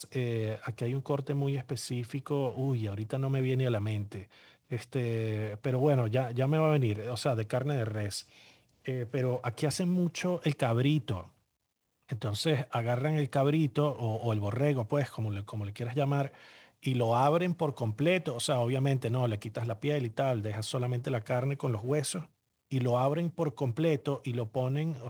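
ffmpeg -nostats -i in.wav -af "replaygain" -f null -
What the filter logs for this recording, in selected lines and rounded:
track_gain = +12.1 dB
track_peak = 0.164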